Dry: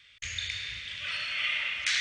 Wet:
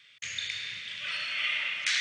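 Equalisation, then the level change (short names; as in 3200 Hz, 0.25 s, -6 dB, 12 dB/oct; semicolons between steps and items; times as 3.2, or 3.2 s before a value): HPF 130 Hz 24 dB/oct; 0.0 dB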